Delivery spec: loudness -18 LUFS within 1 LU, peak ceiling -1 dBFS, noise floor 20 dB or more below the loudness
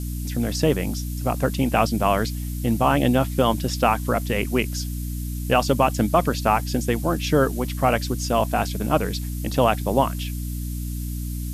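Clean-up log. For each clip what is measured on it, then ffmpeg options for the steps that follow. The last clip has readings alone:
hum 60 Hz; harmonics up to 300 Hz; hum level -26 dBFS; noise floor -29 dBFS; noise floor target -43 dBFS; loudness -23.0 LUFS; peak -4.5 dBFS; loudness target -18.0 LUFS
-> -af "bandreject=f=60:t=h:w=6,bandreject=f=120:t=h:w=6,bandreject=f=180:t=h:w=6,bandreject=f=240:t=h:w=6,bandreject=f=300:t=h:w=6"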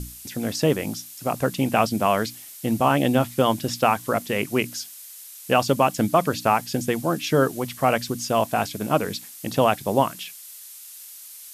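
hum none; noise floor -42 dBFS; noise floor target -43 dBFS
-> -af "afftdn=nr=6:nf=-42"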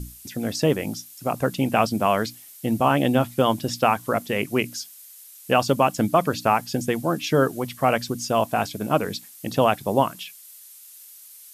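noise floor -46 dBFS; loudness -23.0 LUFS; peak -5.0 dBFS; loudness target -18.0 LUFS
-> -af "volume=5dB,alimiter=limit=-1dB:level=0:latency=1"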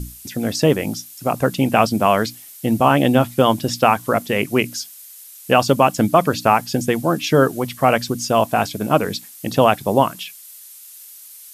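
loudness -18.0 LUFS; peak -1.0 dBFS; noise floor -41 dBFS

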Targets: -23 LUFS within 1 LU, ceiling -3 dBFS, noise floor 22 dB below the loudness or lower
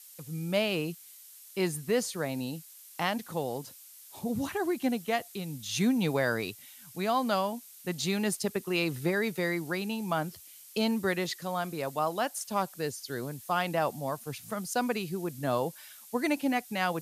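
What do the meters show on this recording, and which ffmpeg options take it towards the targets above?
noise floor -52 dBFS; noise floor target -54 dBFS; loudness -31.5 LUFS; peak -15.5 dBFS; loudness target -23.0 LUFS
-> -af "afftdn=nr=6:nf=-52"
-af "volume=8.5dB"

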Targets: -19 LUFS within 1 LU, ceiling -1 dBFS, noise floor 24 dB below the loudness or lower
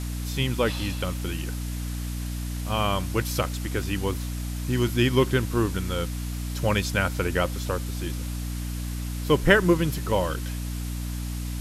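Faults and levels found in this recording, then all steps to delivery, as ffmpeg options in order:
hum 60 Hz; harmonics up to 300 Hz; hum level -28 dBFS; noise floor -31 dBFS; noise floor target -51 dBFS; loudness -26.5 LUFS; peak -5.0 dBFS; loudness target -19.0 LUFS
-> -af "bandreject=f=60:t=h:w=4,bandreject=f=120:t=h:w=4,bandreject=f=180:t=h:w=4,bandreject=f=240:t=h:w=4,bandreject=f=300:t=h:w=4"
-af "afftdn=nr=20:nf=-31"
-af "volume=7.5dB,alimiter=limit=-1dB:level=0:latency=1"

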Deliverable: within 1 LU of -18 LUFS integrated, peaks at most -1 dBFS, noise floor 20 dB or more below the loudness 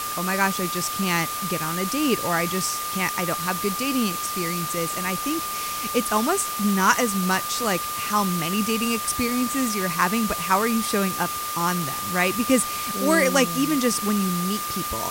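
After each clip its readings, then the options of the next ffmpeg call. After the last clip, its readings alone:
steady tone 1200 Hz; tone level -29 dBFS; noise floor -29 dBFS; noise floor target -43 dBFS; loudness -23.0 LUFS; peak -3.5 dBFS; loudness target -18.0 LUFS
-> -af "bandreject=f=1.2k:w=30"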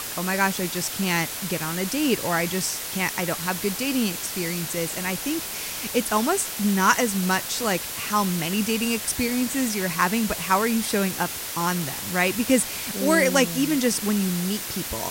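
steady tone none; noise floor -33 dBFS; noise floor target -44 dBFS
-> -af "afftdn=nr=11:nf=-33"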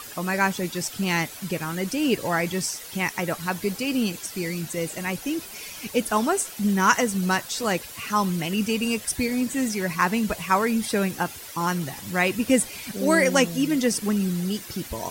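noise floor -40 dBFS; noise floor target -45 dBFS
-> -af "afftdn=nr=6:nf=-40"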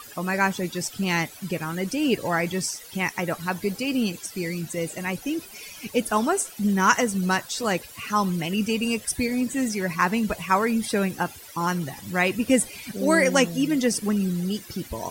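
noise floor -44 dBFS; noise floor target -45 dBFS
-> -af "afftdn=nr=6:nf=-44"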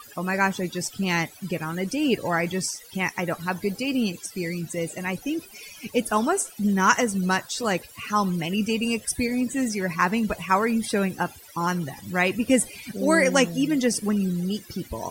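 noise floor -47 dBFS; loudness -25.0 LUFS; peak -4.0 dBFS; loudness target -18.0 LUFS
-> -af "volume=7dB,alimiter=limit=-1dB:level=0:latency=1"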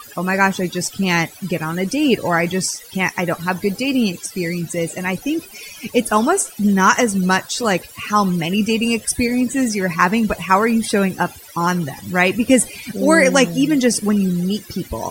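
loudness -18.0 LUFS; peak -1.0 dBFS; noise floor -40 dBFS

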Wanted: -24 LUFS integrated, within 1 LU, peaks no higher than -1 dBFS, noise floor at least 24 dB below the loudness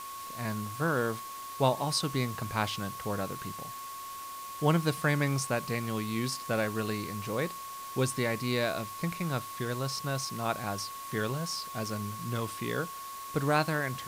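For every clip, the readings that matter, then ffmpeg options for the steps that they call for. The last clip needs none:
steady tone 1100 Hz; tone level -40 dBFS; noise floor -42 dBFS; noise floor target -57 dBFS; loudness -32.5 LUFS; peak -12.0 dBFS; loudness target -24.0 LUFS
-> -af "bandreject=f=1.1k:w=30"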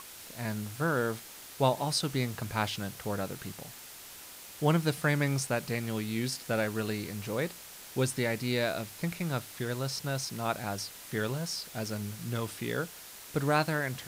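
steady tone none; noise floor -48 dBFS; noise floor target -57 dBFS
-> -af "afftdn=nr=9:nf=-48"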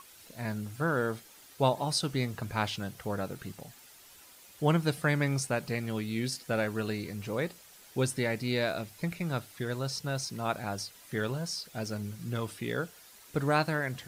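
noise floor -55 dBFS; noise floor target -57 dBFS
-> -af "afftdn=nr=6:nf=-55"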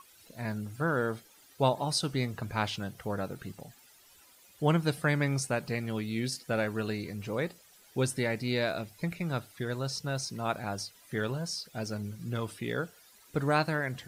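noise floor -59 dBFS; loudness -32.5 LUFS; peak -12.5 dBFS; loudness target -24.0 LUFS
-> -af "volume=8.5dB"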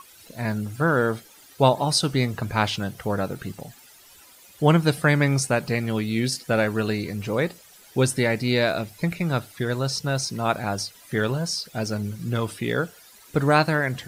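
loudness -24.0 LUFS; peak -4.0 dBFS; noise floor -51 dBFS

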